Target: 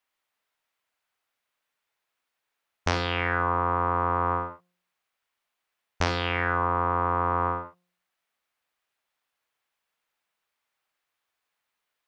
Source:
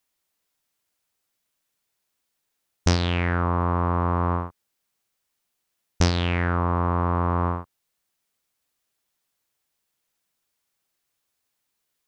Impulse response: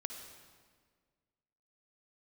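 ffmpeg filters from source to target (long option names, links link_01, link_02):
-filter_complex "[0:a]acrossover=split=560 3200:gain=0.251 1 0.224[link_01][link_02][link_03];[link_01][link_02][link_03]amix=inputs=3:normalize=0,bandreject=frequency=177.7:width_type=h:width=4,bandreject=frequency=355.4:width_type=h:width=4,bandreject=frequency=533.1:width_type=h:width=4,bandreject=frequency=710.8:width_type=h:width=4,bandreject=frequency=888.5:width_type=h:width=4,bandreject=frequency=1066.2:width_type=h:width=4,bandreject=frequency=1243.9:width_type=h:width=4,bandreject=frequency=1421.6:width_type=h:width=4,bandreject=frequency=1599.3:width_type=h:width=4,bandreject=frequency=1777:width_type=h:width=4,bandreject=frequency=1954.7:width_type=h:width=4,bandreject=frequency=2132.4:width_type=h:width=4,bandreject=frequency=2310.1:width_type=h:width=4,bandreject=frequency=2487.8:width_type=h:width=4,bandreject=frequency=2665.5:width_type=h:width=4,bandreject=frequency=2843.2:width_type=h:width=4,bandreject=frequency=3020.9:width_type=h:width=4,bandreject=frequency=3198.6:width_type=h:width=4,bandreject=frequency=3376.3:width_type=h:width=4,bandreject=frequency=3554:width_type=h:width=4,bandreject=frequency=3731.7:width_type=h:width=4,bandreject=frequency=3909.4:width_type=h:width=4,bandreject=frequency=4087.1:width_type=h:width=4,bandreject=frequency=4264.8:width_type=h:width=4,bandreject=frequency=4442.5:width_type=h:width=4,bandreject=frequency=4620.2:width_type=h:width=4,bandreject=frequency=4797.9:width_type=h:width=4,bandreject=frequency=4975.6:width_type=h:width=4,bandreject=frequency=5153.3:width_type=h:width=4,bandreject=frequency=5331:width_type=h:width=4,bandreject=frequency=5508.7:width_type=h:width=4,bandreject=frequency=5686.4:width_type=h:width=4,bandreject=frequency=5864.1:width_type=h:width=4,bandreject=frequency=6041.8:width_type=h:width=4,bandreject=frequency=6219.5:width_type=h:width=4,bandreject=frequency=6397.2:width_type=h:width=4,bandreject=frequency=6574.9:width_type=h:width=4,bandreject=frequency=6752.6:width_type=h:width=4[link_04];[1:a]atrim=start_sample=2205,afade=type=out:start_time=0.15:duration=0.01,atrim=end_sample=7056[link_05];[link_04][link_05]afir=irnorm=-1:irlink=0,volume=5.5dB"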